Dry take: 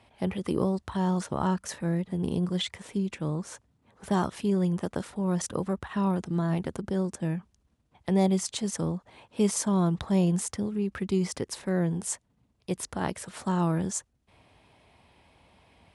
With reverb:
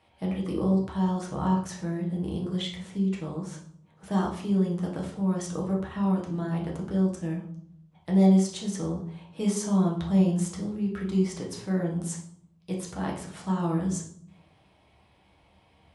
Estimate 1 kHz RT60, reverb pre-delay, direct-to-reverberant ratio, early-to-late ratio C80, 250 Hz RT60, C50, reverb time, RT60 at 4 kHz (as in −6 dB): 0.60 s, 6 ms, −2.0 dB, 11.0 dB, 0.85 s, 6.5 dB, 0.60 s, 0.45 s